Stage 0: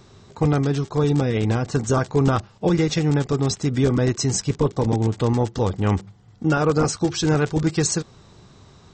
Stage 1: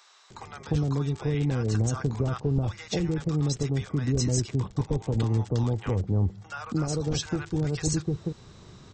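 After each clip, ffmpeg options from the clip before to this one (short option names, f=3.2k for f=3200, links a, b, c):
-filter_complex "[0:a]acrossover=split=120[a][b];[b]acompressor=threshold=-27dB:ratio=6[c];[a][c]amix=inputs=2:normalize=0,acrossover=split=810[d][e];[d]adelay=300[f];[f][e]amix=inputs=2:normalize=0"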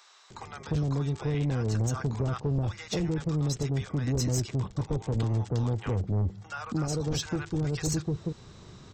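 -af "asoftclip=type=tanh:threshold=-21.5dB"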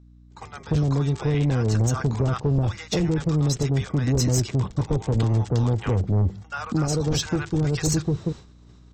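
-af "agate=range=-33dB:threshold=-37dB:ratio=3:detection=peak,aeval=exprs='val(0)+0.00178*(sin(2*PI*60*n/s)+sin(2*PI*2*60*n/s)/2+sin(2*PI*3*60*n/s)/3+sin(2*PI*4*60*n/s)/4+sin(2*PI*5*60*n/s)/5)':c=same,volume=6.5dB"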